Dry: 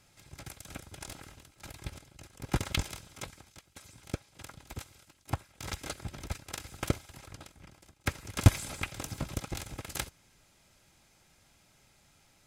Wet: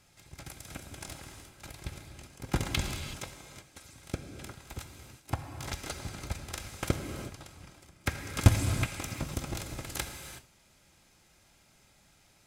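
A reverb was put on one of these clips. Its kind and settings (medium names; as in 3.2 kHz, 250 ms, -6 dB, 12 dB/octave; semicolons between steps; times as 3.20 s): gated-style reverb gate 400 ms flat, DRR 4.5 dB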